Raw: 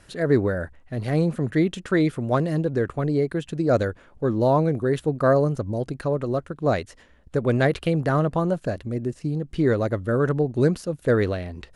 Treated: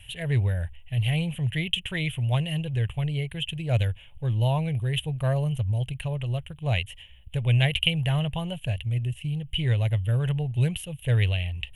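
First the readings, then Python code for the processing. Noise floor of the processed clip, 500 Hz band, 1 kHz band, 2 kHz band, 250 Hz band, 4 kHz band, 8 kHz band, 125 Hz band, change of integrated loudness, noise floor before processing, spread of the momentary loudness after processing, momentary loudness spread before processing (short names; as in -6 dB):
-48 dBFS, -13.5 dB, -10.0 dB, -1.5 dB, -9.0 dB, +12.0 dB, n/a, +2.0 dB, -3.0 dB, -53 dBFS, 7 LU, 8 LU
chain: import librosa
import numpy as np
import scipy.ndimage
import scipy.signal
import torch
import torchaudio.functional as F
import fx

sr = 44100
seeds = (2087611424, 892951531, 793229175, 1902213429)

y = fx.curve_eq(x, sr, hz=(120.0, 280.0, 880.0, 1300.0, 3000.0, 4600.0, 7100.0, 11000.0), db=(0, -28, -12, -25, 13, -23, -12, 4))
y = y * 10.0 ** (6.0 / 20.0)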